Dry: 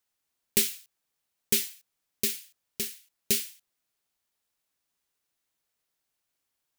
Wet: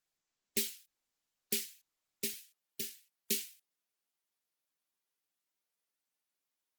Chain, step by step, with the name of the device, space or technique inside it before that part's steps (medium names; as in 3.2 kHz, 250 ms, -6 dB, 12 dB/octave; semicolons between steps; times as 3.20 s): 2.24–3.38 s: high-pass 92 Hz 12 dB/octave; noise-suppressed video call (high-pass 160 Hz 24 dB/octave; spectral gate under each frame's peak -25 dB strong; trim -7.5 dB; Opus 16 kbps 48 kHz)